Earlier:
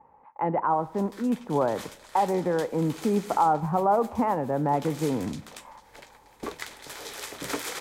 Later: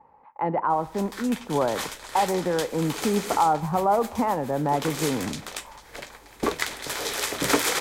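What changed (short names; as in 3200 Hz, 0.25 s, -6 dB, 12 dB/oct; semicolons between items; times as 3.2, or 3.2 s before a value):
speech: remove air absorption 240 m; background +10.0 dB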